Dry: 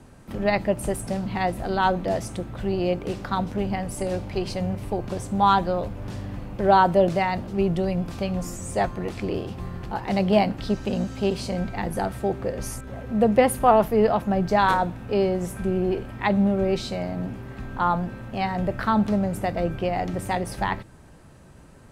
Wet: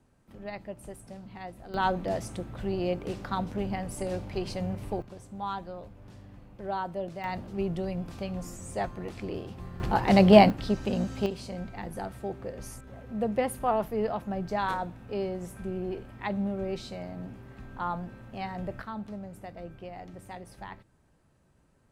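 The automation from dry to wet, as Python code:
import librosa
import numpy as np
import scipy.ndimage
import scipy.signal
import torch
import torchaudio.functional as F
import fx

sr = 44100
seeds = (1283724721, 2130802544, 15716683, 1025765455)

y = fx.gain(x, sr, db=fx.steps((0.0, -17.0), (1.74, -5.5), (5.02, -16.0), (7.24, -8.0), (9.8, 4.0), (10.5, -3.0), (11.26, -10.0), (18.82, -17.0)))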